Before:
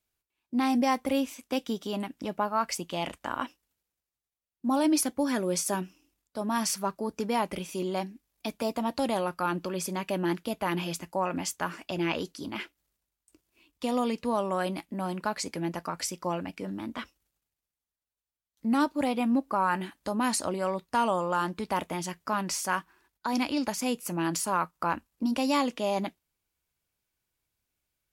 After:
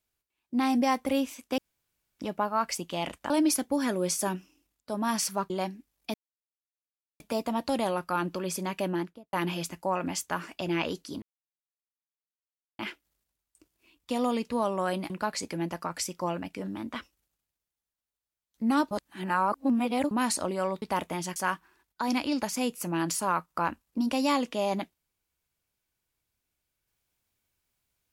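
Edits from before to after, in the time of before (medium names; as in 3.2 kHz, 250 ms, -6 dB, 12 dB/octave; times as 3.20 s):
1.58–2.19 s: room tone
3.30–4.77 s: delete
6.97–7.86 s: delete
8.50 s: insert silence 1.06 s
10.12–10.63 s: studio fade out
12.52 s: insert silence 1.57 s
14.83–15.13 s: delete
18.94–20.14 s: reverse
20.85–21.62 s: delete
22.16–22.61 s: delete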